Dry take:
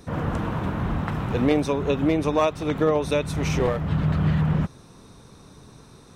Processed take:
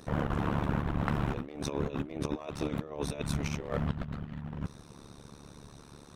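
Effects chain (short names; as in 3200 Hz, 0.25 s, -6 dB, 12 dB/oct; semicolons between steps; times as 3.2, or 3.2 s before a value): negative-ratio compressor -26 dBFS, ratio -0.5; AM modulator 72 Hz, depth 95%; gain -2.5 dB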